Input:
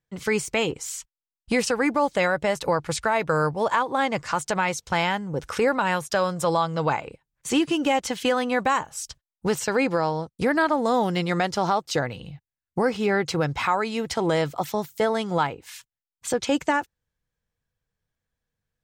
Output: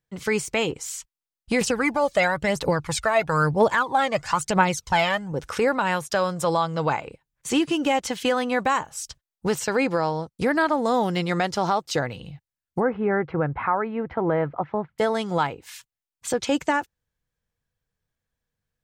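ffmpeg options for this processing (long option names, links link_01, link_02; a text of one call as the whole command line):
ffmpeg -i in.wav -filter_complex "[0:a]asettb=1/sr,asplit=3[link_01][link_02][link_03];[link_01]atrim=end=1.614[link_04];[link_02]atrim=start=1.61:end=5.32,asetpts=PTS-STARTPTS,afade=type=in:duration=0.004:curve=qsin,afade=type=out:start_time=3.706:duration=0.004:curve=qsin,aphaser=in_gain=1:out_gain=1:delay=1.8:decay=0.61:speed=1:type=triangular[link_05];[link_03]atrim=start=5.316[link_06];[link_04][link_05]acrossfade=duration=0.004:curve1=hsin:curve2=qsin[link_07];[link_07][link_06]acrossfade=duration=0.004:curve1=qsin:curve2=hsin,asplit=3[link_08][link_09][link_10];[link_08]afade=type=out:start_time=12.79:duration=0.02[link_11];[link_09]lowpass=frequency=1800:width=0.5412,lowpass=frequency=1800:width=1.3066,afade=type=in:start_time=12.79:duration=0.02,afade=type=out:start_time=14.98:duration=0.02[link_12];[link_10]afade=type=in:start_time=14.98:duration=0.02[link_13];[link_11][link_12][link_13]amix=inputs=3:normalize=0" out.wav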